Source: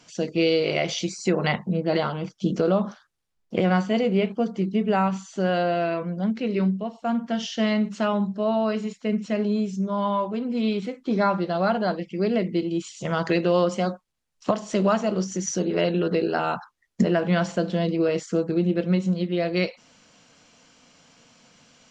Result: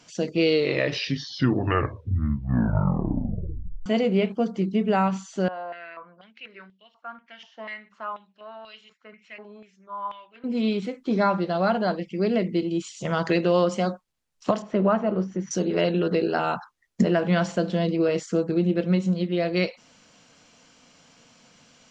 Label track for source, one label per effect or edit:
0.410000	0.410000	tape stop 3.45 s
5.480000	10.440000	step-sequenced band-pass 4.1 Hz 950–3200 Hz
14.620000	15.510000	low-pass 1.8 kHz

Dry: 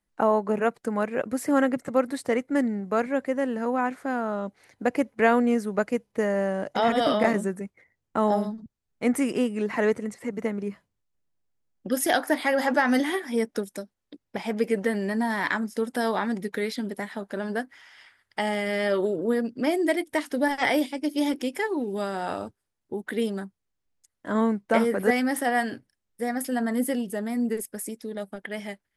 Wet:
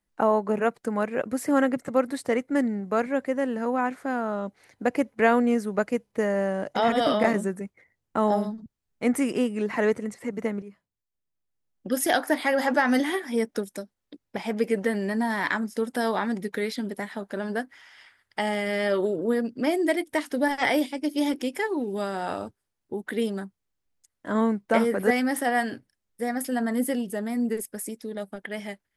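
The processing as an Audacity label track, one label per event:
10.620000	11.960000	fade in quadratic, from -12 dB

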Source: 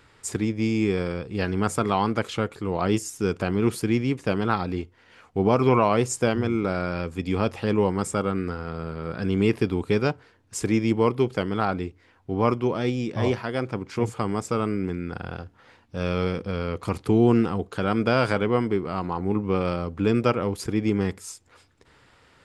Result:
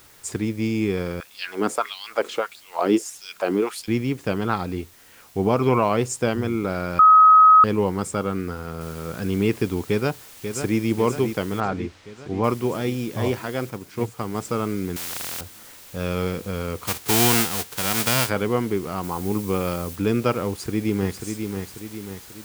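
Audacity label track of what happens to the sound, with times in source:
1.200000	3.880000	LFO high-pass sine 1.6 Hz 270–4200 Hz
6.990000	7.640000	bleep 1.27 kHz -8 dBFS
8.810000	8.810000	noise floor step -52 dB -45 dB
9.860000	10.790000	echo throw 540 ms, feedback 65%, level -8 dB
11.600000	12.440000	distance through air 130 m
13.700000	14.350000	upward expansion, over -33 dBFS
14.960000	15.410000	spectrum-flattening compressor 10:1
16.860000	18.280000	formants flattened exponent 0.3
19.030000	19.960000	treble shelf 7 kHz +7.5 dB
20.480000	21.250000	echo throw 540 ms, feedback 50%, level -6 dB

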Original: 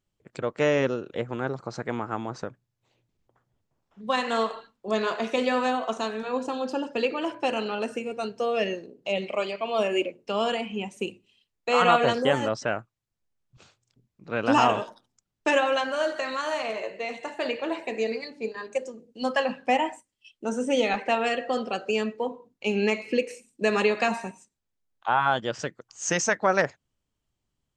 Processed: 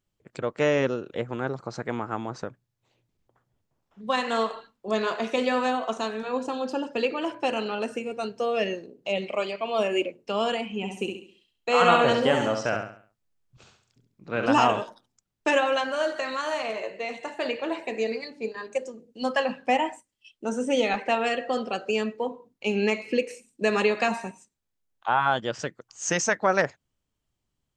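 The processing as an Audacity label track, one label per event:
10.760000	14.460000	feedback delay 68 ms, feedback 38%, level -5.5 dB

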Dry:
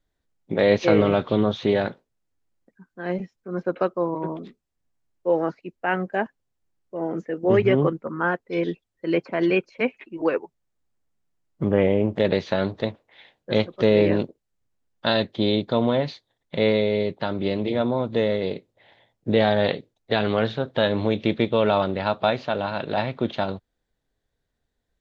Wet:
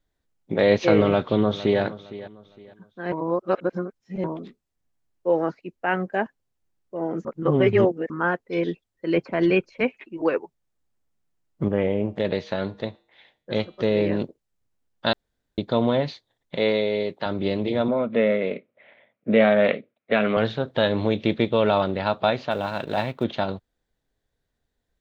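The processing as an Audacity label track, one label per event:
1.060000	1.810000	echo throw 460 ms, feedback 30%, level -16 dB
3.120000	4.240000	reverse
7.250000	8.100000	reverse
9.160000	9.840000	bass shelf 110 Hz +11 dB
11.680000	14.210000	feedback comb 68 Hz, decay 0.51 s, harmonics odd, mix 40%
15.130000	15.580000	room tone
16.550000	17.260000	high-pass 280 Hz 6 dB/octave
17.880000	20.370000	cabinet simulation 210–2900 Hz, peaks and dips at 220 Hz +7 dB, 340 Hz -4 dB, 590 Hz +6 dB, 850 Hz -7 dB, 1.3 kHz +6 dB, 2.3 kHz +9 dB
22.510000	23.240000	companding laws mixed up coded by A

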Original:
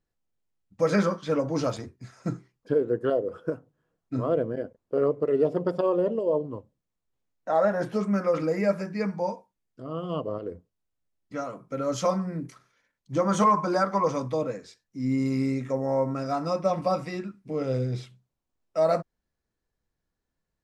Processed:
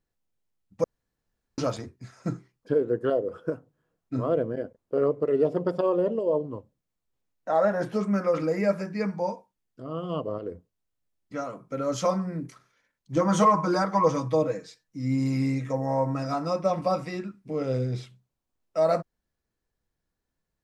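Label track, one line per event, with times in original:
0.840000	1.580000	room tone
13.160000	16.340000	comb 6.3 ms, depth 71%

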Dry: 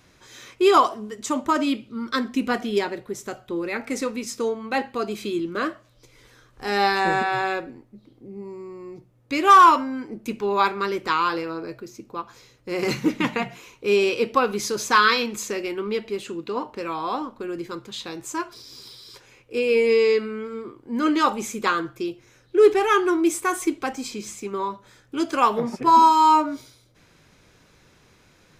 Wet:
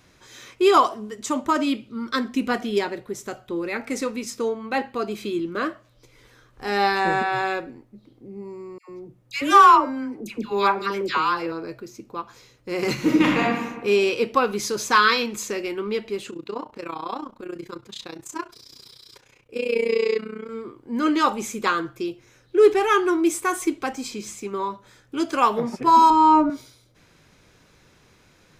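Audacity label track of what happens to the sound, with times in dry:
4.300000	7.360000	peaking EQ 7.5 kHz -3 dB 1.9 oct
8.780000	11.520000	phase dispersion lows, late by 110 ms, half as late at 1.1 kHz
12.940000	13.430000	reverb throw, RT60 1.2 s, DRR -3.5 dB
16.300000	20.490000	AM modulator 30 Hz, depth 75%
26.100000	26.500000	tilt EQ -4 dB/octave

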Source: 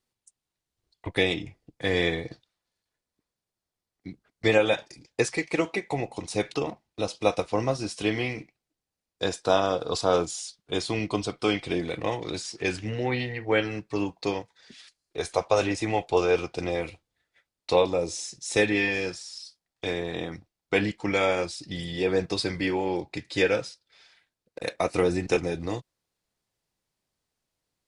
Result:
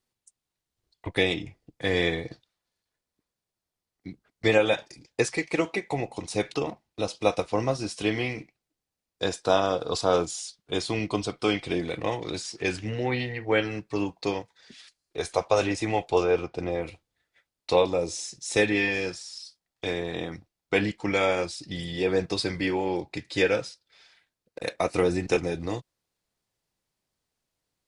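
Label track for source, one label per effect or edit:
16.220000	16.860000	treble shelf 3.4 kHz -> 2.3 kHz -11.5 dB

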